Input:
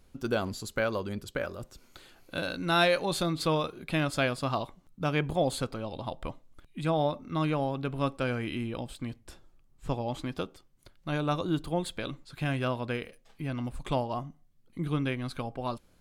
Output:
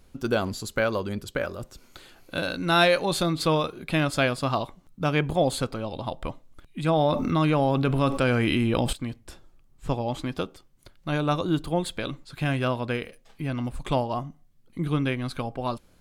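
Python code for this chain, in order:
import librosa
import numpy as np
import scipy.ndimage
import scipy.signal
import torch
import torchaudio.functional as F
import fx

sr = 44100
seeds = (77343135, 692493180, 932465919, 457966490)

y = fx.env_flatten(x, sr, amount_pct=70, at=(6.88, 8.93))
y = F.gain(torch.from_numpy(y), 4.5).numpy()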